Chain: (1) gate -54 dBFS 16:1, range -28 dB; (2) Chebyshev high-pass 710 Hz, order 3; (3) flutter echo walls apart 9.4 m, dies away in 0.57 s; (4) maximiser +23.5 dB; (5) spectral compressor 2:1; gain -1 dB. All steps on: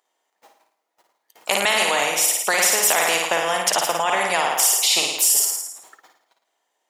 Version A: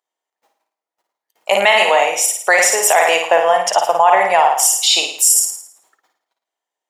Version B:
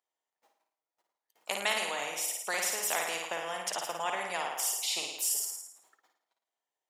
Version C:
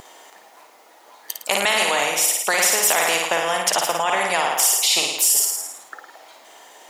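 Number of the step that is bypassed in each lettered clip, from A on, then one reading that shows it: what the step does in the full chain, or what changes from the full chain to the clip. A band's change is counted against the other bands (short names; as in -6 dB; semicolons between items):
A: 5, 500 Hz band +6.0 dB; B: 4, crest factor change +1.5 dB; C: 1, momentary loudness spread change +3 LU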